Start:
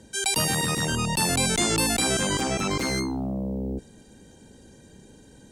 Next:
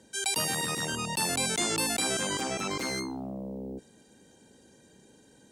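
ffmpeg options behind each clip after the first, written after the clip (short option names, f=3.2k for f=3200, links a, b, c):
-af "highpass=f=260:p=1,volume=-4.5dB"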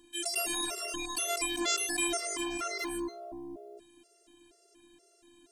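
-af "afftfilt=real='hypot(re,im)*cos(PI*b)':imag='0':win_size=512:overlap=0.75,afftfilt=real='re*gt(sin(2*PI*2.1*pts/sr)*(1-2*mod(floor(b*sr/1024/360),2)),0)':imag='im*gt(sin(2*PI*2.1*pts/sr)*(1-2*mod(floor(b*sr/1024/360),2)),0)':win_size=1024:overlap=0.75,volume=4.5dB"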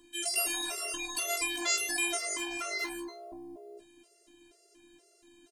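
-filter_complex "[0:a]acrossover=split=460[a][b];[a]acompressor=threshold=-48dB:ratio=6[c];[b]aecho=1:1:17|47:0.596|0.224[d];[c][d]amix=inputs=2:normalize=0"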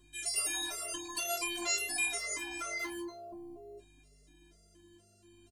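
-filter_complex "[0:a]aeval=exprs='val(0)+0.000891*(sin(2*PI*50*n/s)+sin(2*PI*2*50*n/s)/2+sin(2*PI*3*50*n/s)/3+sin(2*PI*4*50*n/s)/4+sin(2*PI*5*50*n/s)/5)':c=same,asplit=2[a][b];[b]adelay=5,afreqshift=0.52[c];[a][c]amix=inputs=2:normalize=1"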